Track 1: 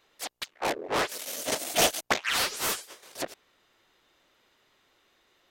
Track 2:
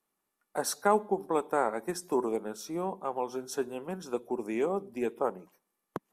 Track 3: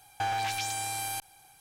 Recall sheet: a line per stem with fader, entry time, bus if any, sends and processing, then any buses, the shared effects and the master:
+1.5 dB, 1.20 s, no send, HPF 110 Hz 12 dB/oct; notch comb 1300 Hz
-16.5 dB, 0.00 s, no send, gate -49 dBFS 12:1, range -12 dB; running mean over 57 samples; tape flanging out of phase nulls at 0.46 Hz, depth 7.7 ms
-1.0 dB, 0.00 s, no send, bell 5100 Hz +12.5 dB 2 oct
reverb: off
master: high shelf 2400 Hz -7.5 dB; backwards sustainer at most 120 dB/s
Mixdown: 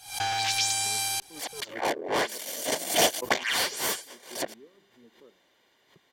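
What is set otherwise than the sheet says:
stem 1: missing HPF 110 Hz 12 dB/oct; master: missing high shelf 2400 Hz -7.5 dB

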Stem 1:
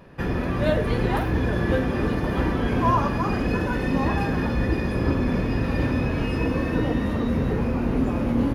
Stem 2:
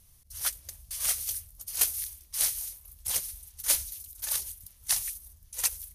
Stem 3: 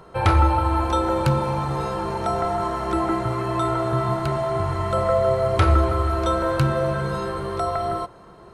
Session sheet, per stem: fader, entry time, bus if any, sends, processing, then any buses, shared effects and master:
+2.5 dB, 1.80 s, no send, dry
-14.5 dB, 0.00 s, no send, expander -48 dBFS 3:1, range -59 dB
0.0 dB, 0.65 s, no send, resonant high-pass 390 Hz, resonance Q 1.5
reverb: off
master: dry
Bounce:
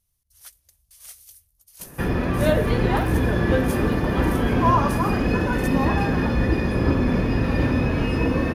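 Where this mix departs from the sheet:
stem 2: missing expander -48 dBFS 3:1, range -59 dB; stem 3: muted

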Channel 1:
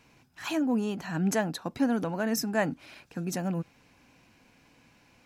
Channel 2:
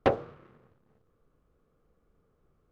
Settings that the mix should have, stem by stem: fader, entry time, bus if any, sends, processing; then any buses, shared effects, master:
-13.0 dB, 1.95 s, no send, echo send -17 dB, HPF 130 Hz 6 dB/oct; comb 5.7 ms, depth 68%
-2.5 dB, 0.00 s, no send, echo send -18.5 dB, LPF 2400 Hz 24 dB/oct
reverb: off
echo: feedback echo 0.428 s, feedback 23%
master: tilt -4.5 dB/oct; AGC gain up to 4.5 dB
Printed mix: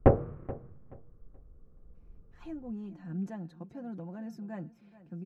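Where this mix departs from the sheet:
stem 1 -13.0 dB -> -20.5 dB; master: missing AGC gain up to 4.5 dB

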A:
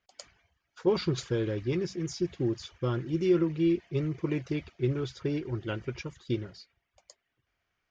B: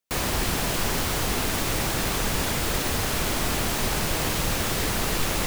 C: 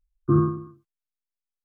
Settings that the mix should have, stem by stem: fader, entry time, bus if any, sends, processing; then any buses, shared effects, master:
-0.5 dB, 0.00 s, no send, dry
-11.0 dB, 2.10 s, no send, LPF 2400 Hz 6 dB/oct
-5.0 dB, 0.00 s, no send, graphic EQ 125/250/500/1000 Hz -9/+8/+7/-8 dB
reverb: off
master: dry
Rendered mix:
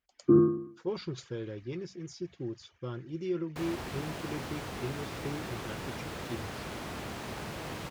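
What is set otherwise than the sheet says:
stem A -0.5 dB -> -8.5 dB; stem B: entry 2.10 s -> 3.45 s; master: extra HPF 79 Hz

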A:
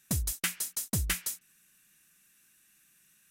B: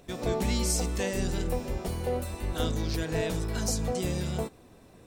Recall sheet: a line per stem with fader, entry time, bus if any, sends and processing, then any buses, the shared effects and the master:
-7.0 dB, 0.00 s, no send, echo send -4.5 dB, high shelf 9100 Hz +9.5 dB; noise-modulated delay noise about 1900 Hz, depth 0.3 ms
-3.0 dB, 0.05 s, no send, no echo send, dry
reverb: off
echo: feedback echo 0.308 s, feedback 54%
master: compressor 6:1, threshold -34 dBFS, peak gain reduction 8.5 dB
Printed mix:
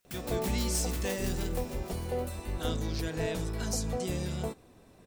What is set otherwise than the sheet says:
stem A -7.0 dB -> -14.5 dB; master: missing compressor 6:1, threshold -34 dBFS, peak gain reduction 8.5 dB

